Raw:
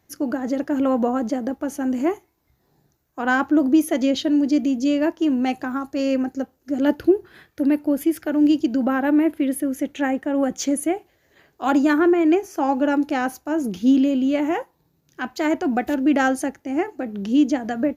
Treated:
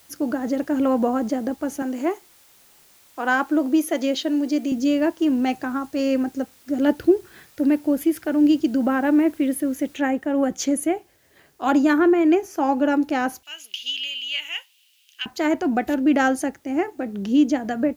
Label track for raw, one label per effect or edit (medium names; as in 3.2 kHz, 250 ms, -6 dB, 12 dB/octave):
1.820000	4.720000	high-pass 310 Hz
9.970000	9.970000	noise floor step -54 dB -64 dB
13.430000	15.260000	resonant high-pass 2.9 kHz, resonance Q 7